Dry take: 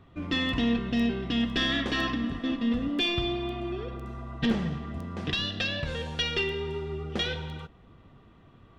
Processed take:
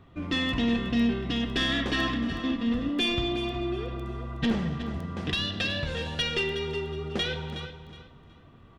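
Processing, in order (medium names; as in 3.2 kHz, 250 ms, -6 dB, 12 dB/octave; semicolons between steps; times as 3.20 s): saturation -17.5 dBFS, distortion -24 dB; on a send: feedback delay 368 ms, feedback 25%, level -11 dB; on the sum: trim +1 dB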